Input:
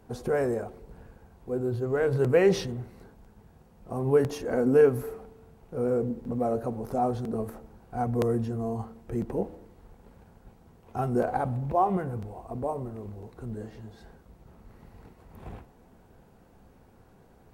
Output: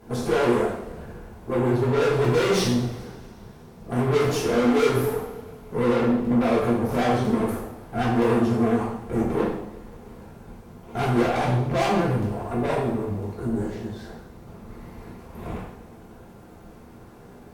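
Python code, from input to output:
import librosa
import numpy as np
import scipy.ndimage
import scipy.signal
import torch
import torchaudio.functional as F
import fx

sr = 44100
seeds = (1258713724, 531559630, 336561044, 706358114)

y = fx.vibrato(x, sr, rate_hz=10.0, depth_cents=94.0)
y = fx.tube_stage(y, sr, drive_db=34.0, bias=0.65)
y = fx.rev_double_slope(y, sr, seeds[0], early_s=0.67, late_s=2.9, knee_db=-22, drr_db=-7.0)
y = F.gain(torch.from_numpy(y), 7.0).numpy()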